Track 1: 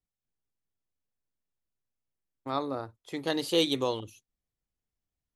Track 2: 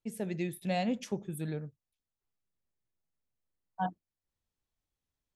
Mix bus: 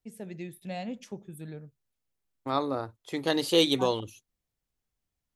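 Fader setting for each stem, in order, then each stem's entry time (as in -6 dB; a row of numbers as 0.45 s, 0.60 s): +3.0 dB, -5.0 dB; 0.00 s, 0.00 s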